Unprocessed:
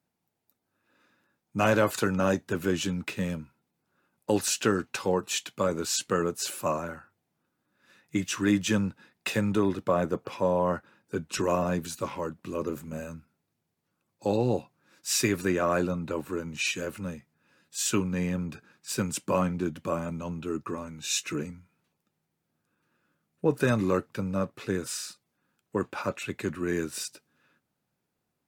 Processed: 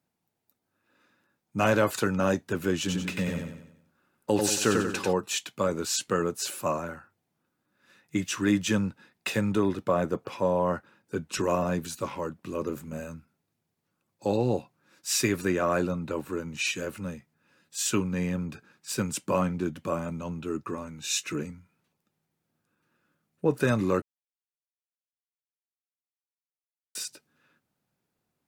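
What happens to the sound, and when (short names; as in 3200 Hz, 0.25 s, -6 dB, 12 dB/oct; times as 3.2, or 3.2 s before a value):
2.79–5.13 feedback echo 93 ms, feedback 44%, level -3.5 dB
24.02–26.95 mute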